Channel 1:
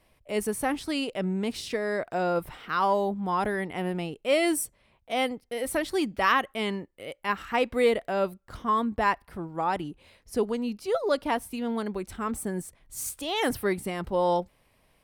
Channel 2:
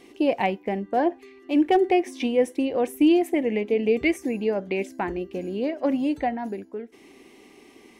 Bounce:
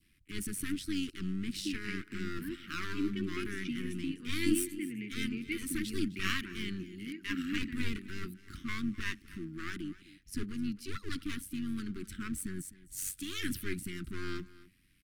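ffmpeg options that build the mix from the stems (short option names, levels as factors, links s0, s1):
-filter_complex "[0:a]equalizer=f=340:w=1.8:g=5,aeval=exprs='clip(val(0),-1,0.0237)':c=same,volume=0.944,asplit=2[s0][s1];[s1]volume=0.112[s2];[1:a]acontrast=51,adelay=1450,volume=0.188,asplit=2[s3][s4];[s4]volume=0.237[s5];[s2][s5]amix=inputs=2:normalize=0,aecho=0:1:257:1[s6];[s0][s3][s6]amix=inputs=3:normalize=0,adynamicequalizer=threshold=0.00355:dfrequency=1800:dqfactor=2.4:tfrequency=1800:tqfactor=2.4:attack=5:release=100:ratio=0.375:range=2:mode=cutabove:tftype=bell,tremolo=f=94:d=0.571,asuperstop=centerf=670:order=8:qfactor=0.6"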